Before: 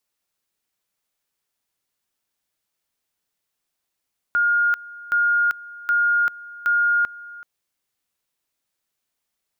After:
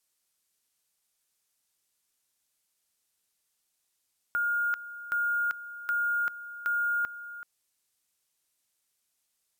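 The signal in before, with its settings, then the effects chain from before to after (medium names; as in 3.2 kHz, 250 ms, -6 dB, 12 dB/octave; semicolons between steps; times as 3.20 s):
two-level tone 1.42 kHz -15.5 dBFS, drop 20 dB, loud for 0.39 s, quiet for 0.38 s, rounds 4
level held to a coarse grid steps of 14 dB; added noise violet -69 dBFS; careless resampling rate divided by 2×, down filtered, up hold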